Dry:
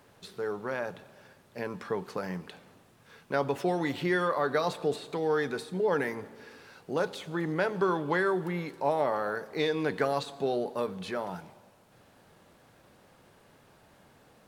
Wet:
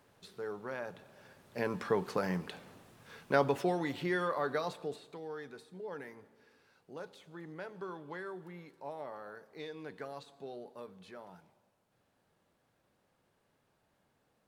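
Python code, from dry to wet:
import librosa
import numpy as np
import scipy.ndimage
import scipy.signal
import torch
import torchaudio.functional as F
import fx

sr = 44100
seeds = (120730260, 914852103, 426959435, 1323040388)

y = fx.gain(x, sr, db=fx.line((0.86, -7.0), (1.66, 1.5), (3.33, 1.5), (3.87, -5.5), (4.48, -5.5), (5.34, -16.0)))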